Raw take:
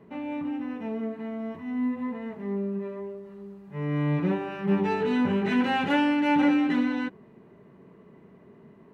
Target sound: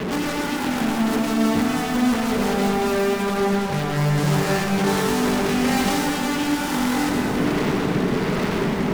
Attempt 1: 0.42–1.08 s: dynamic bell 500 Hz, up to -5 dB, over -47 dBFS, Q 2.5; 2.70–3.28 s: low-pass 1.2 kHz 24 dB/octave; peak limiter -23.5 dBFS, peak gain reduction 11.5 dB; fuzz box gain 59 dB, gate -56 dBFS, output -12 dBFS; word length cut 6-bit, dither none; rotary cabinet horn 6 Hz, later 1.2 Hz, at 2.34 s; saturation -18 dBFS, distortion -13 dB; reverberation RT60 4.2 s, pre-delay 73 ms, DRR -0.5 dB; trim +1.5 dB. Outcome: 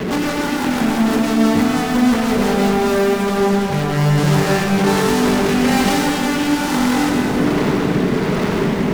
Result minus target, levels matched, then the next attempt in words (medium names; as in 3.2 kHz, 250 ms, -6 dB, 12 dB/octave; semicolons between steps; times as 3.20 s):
saturation: distortion -4 dB
0.42–1.08 s: dynamic bell 500 Hz, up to -5 dB, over -47 dBFS, Q 2.5; 2.70–3.28 s: low-pass 1.2 kHz 24 dB/octave; peak limiter -23.5 dBFS, peak gain reduction 11.5 dB; fuzz box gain 59 dB, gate -56 dBFS, output -12 dBFS; word length cut 6-bit, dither none; rotary cabinet horn 6 Hz, later 1.2 Hz, at 2.34 s; saturation -24.5 dBFS, distortion -9 dB; reverberation RT60 4.2 s, pre-delay 73 ms, DRR -0.5 dB; trim +1.5 dB